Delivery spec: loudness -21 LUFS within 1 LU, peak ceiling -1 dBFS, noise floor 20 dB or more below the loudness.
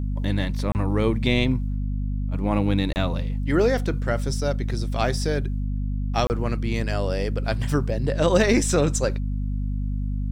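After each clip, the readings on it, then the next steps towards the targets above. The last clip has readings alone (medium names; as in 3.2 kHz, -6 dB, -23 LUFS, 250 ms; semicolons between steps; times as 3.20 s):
dropouts 3; longest dropout 29 ms; hum 50 Hz; highest harmonic 250 Hz; hum level -23 dBFS; loudness -24.5 LUFS; peak level -7.0 dBFS; loudness target -21.0 LUFS
-> interpolate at 0.72/2.93/6.27 s, 29 ms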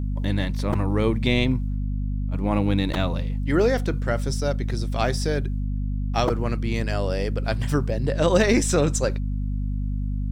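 dropouts 0; hum 50 Hz; highest harmonic 250 Hz; hum level -23 dBFS
-> hum notches 50/100/150/200/250 Hz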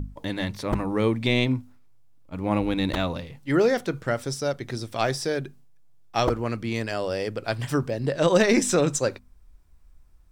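hum not found; loudness -25.5 LUFS; peak level -8.0 dBFS; loudness target -21.0 LUFS
-> trim +4.5 dB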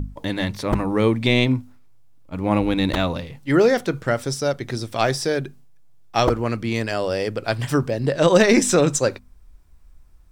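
loudness -21.0 LUFS; peak level -3.5 dBFS; noise floor -49 dBFS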